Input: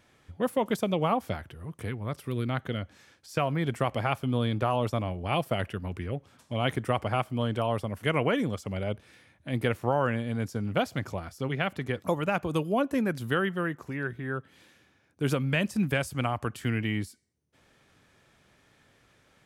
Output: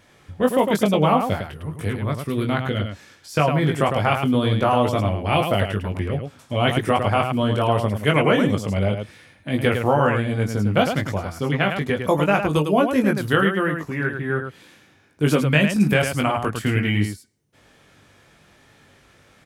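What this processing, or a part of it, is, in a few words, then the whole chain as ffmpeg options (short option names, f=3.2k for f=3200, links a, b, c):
slapback doubling: -filter_complex "[0:a]asplit=3[a][b][c];[b]adelay=20,volume=-4dB[d];[c]adelay=105,volume=-6dB[e];[a][d][e]amix=inputs=3:normalize=0,volume=7dB"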